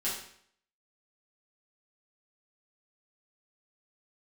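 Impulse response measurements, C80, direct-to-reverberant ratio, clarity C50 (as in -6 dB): 7.0 dB, -10.0 dB, 3.0 dB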